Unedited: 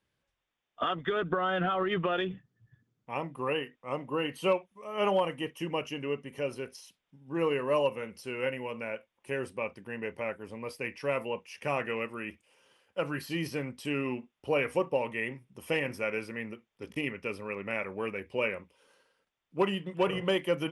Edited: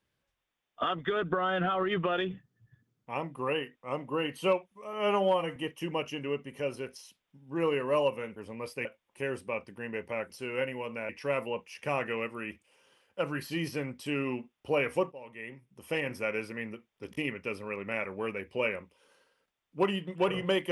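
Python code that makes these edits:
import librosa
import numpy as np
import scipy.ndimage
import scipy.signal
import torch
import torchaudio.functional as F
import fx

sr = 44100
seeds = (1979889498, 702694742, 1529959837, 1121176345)

y = fx.edit(x, sr, fx.stretch_span(start_s=4.93, length_s=0.42, factor=1.5),
    fx.swap(start_s=8.15, length_s=0.79, other_s=10.39, other_length_s=0.49),
    fx.fade_in_from(start_s=14.91, length_s=1.08, floor_db=-20.5), tone=tone)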